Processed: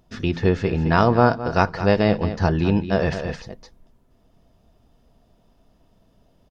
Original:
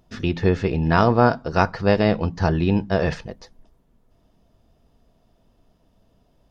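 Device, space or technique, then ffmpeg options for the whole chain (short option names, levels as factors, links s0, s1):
ducked delay: -filter_complex "[0:a]asplit=3[s0][s1][s2];[s1]adelay=214,volume=0.75[s3];[s2]apad=whole_len=296129[s4];[s3][s4]sidechaincompress=threshold=0.0708:ratio=8:attack=5.8:release=530[s5];[s0][s5]amix=inputs=2:normalize=0"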